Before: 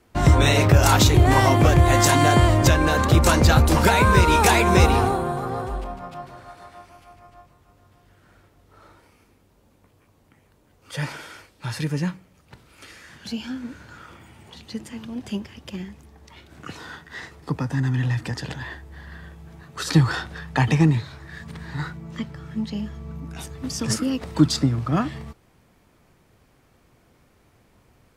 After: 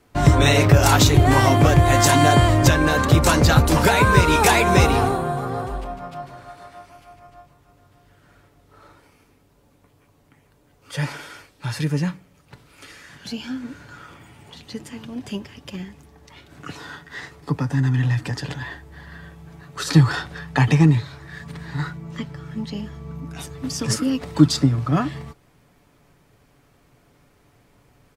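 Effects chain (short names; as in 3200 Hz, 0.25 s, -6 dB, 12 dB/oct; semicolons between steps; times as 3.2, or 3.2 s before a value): comb 7 ms, depth 35%; gain +1 dB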